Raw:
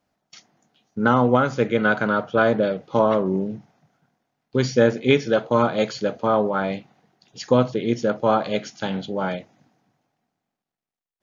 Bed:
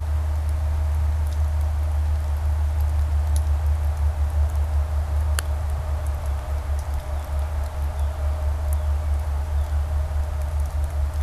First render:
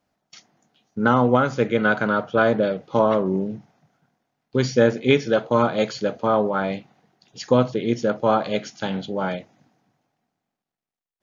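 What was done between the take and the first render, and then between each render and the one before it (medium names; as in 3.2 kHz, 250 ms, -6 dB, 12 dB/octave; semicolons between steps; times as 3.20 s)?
no audible change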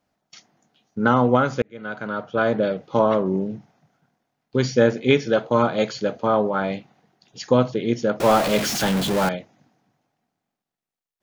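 1.62–2.70 s: fade in; 8.20–9.29 s: jump at every zero crossing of -20 dBFS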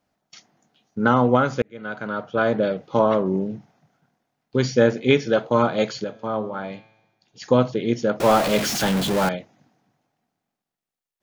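6.04–7.42 s: feedback comb 110 Hz, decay 1 s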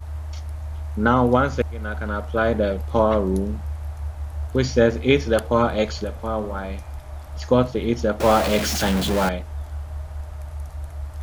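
add bed -8 dB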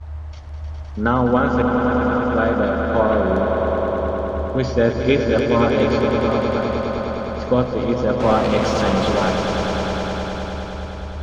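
distance through air 120 m; echo with a slow build-up 103 ms, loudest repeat 5, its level -8 dB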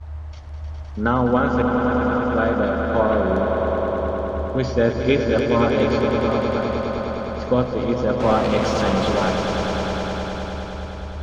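trim -1.5 dB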